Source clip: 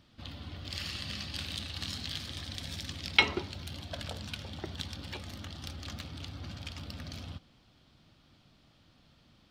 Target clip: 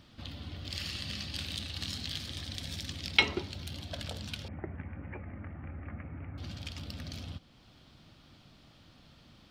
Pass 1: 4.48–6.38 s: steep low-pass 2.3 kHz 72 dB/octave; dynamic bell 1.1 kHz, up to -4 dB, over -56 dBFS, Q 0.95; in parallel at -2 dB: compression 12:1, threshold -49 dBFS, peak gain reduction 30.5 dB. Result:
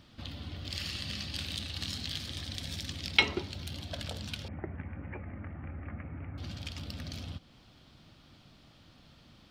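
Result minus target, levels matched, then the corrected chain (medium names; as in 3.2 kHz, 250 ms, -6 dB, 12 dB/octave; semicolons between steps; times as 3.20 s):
compression: peak gain reduction -6 dB
4.48–6.38 s: steep low-pass 2.3 kHz 72 dB/octave; dynamic bell 1.1 kHz, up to -4 dB, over -56 dBFS, Q 0.95; in parallel at -2 dB: compression 12:1, threshold -55.5 dBFS, peak gain reduction 36.5 dB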